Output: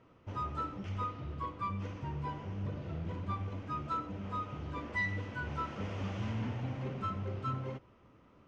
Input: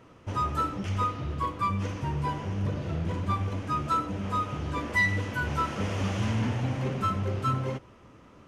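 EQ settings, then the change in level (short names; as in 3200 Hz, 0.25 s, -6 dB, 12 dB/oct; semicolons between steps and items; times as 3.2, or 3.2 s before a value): air absorption 120 m; notch 1700 Hz, Q 25; -8.5 dB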